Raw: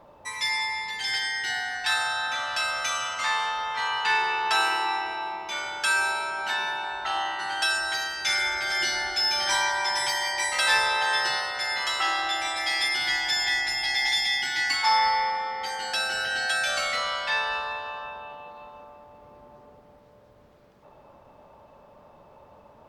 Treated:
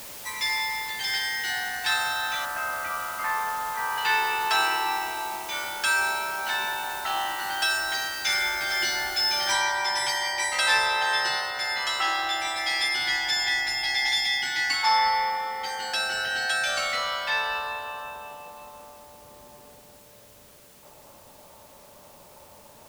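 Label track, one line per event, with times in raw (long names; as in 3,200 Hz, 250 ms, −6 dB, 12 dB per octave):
2.450000	3.980000	low-pass filter 1,900 Hz 24 dB per octave
9.520000	9.520000	noise floor change −41 dB −54 dB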